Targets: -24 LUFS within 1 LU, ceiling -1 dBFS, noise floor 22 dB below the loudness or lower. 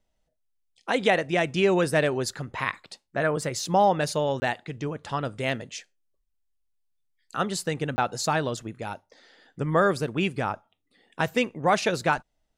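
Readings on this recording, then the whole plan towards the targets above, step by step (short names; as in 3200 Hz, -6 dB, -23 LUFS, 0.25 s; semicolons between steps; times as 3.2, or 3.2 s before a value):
dropouts 2; longest dropout 20 ms; loudness -26.0 LUFS; peak -8.5 dBFS; loudness target -24.0 LUFS
-> interpolate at 4.4/7.96, 20 ms; gain +2 dB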